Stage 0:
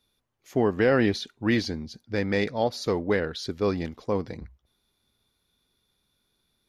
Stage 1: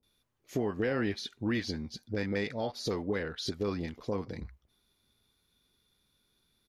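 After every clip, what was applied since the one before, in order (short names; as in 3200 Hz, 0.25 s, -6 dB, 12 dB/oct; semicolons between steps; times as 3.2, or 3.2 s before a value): compressor 2:1, threshold -33 dBFS, peak gain reduction 9 dB; bands offset in time lows, highs 30 ms, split 720 Hz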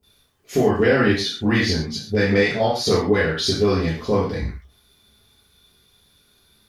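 non-linear reverb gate 0.16 s falling, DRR -6 dB; gain +8.5 dB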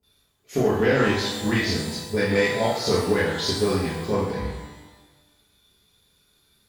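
added harmonics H 7 -29 dB, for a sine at -3.5 dBFS; shimmer reverb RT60 1.1 s, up +12 st, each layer -8 dB, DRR 5 dB; gain -3.5 dB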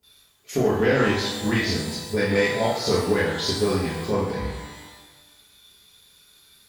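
mismatched tape noise reduction encoder only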